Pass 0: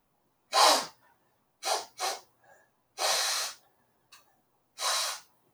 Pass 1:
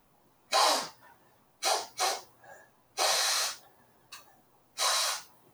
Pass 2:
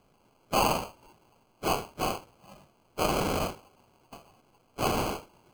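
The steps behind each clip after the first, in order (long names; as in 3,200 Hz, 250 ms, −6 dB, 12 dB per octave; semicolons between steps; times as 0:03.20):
downward compressor 2.5 to 1, threshold −35 dBFS, peak gain reduction 12 dB; level +7.5 dB
decimation without filtering 24×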